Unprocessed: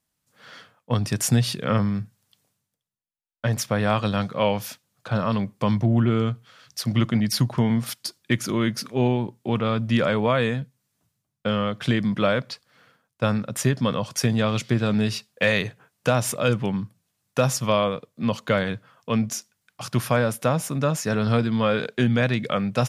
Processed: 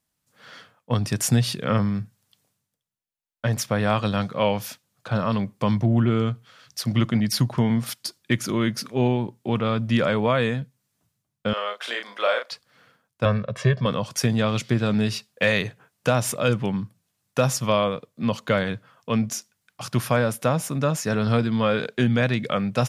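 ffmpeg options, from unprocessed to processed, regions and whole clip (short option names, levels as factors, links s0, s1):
-filter_complex "[0:a]asettb=1/sr,asplit=3[s0][s1][s2];[s0]atrim=end=11.534[s3];[s1]atrim=start=11.53:end=12.52,asetpts=PTS-STARTPTS,afade=t=in:d=0.004:c=qsin,afade=t=out:st=0.986:d=0.004:c=qsin,highpass=f=520:w=0.5412,highpass=f=520:w=1.3066,asplit=2[s4][s5];[s5]adelay=34,volume=0.562[s6];[s4][s6]amix=inputs=2:normalize=0,atrim=end_sample=43659[s7];[s2]atrim=start=12.516[s8];[s3][s7]acrossfade=d=0.004:c1=hsin:c2=qsin[s9];[s9][s8]acrossfade=d=0.004:c1=qsin:c2=hsin,asettb=1/sr,asplit=3[s10][s11][s12];[s10]atrim=end=13.254[s13];[s11]atrim=start=13.25:end=13.86,asetpts=PTS-STARTPTS,afade=t=in:d=0.004:c=qsin,afade=t=out:st=0.606:d=0.004:c=qsin,lowpass=3200,aecho=1:1:1.8:0.88,atrim=end_sample=26901[s14];[s12]atrim=start=13.856[s15];[s13][s14]acrossfade=d=0.004:c1=hsin:c2=qsin[s16];[s16][s15]acrossfade=d=0.004:c1=qsin:c2=hsin"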